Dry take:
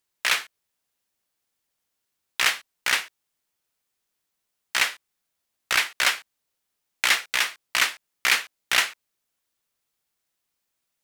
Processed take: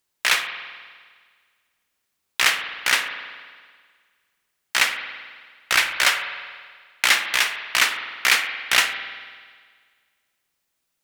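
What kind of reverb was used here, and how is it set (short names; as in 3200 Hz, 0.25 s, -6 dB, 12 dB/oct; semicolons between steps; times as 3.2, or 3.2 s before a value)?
spring tank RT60 1.7 s, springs 49 ms, chirp 45 ms, DRR 7 dB; gain +3 dB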